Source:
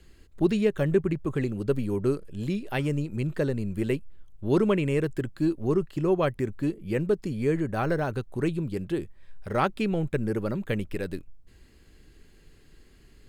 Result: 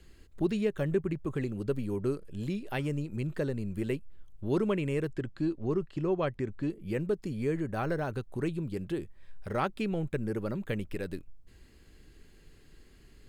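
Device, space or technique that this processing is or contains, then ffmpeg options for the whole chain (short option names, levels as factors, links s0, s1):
parallel compression: -filter_complex "[0:a]asettb=1/sr,asplit=3[s0][s1][s2];[s0]atrim=end=5.114[s3];[s1]atrim=start=5.11:end=6.7,asetpts=PTS-STARTPTS,afade=t=in:d=0.004:c=qsin,afade=t=out:st=1.586:d=0.004:c=qsin,lowpass=6000[s4];[s2]atrim=start=6.696[s5];[s3][s4]acrossfade=d=0.004:c1=hsin:c2=qsin[s6];[s6][s5]acrossfade=d=0.004:c1=qsin:c2=hsin,asplit=2[s7][s8];[s8]acompressor=threshold=0.02:ratio=6,volume=1[s9];[s7][s9]amix=inputs=2:normalize=0,volume=0.422"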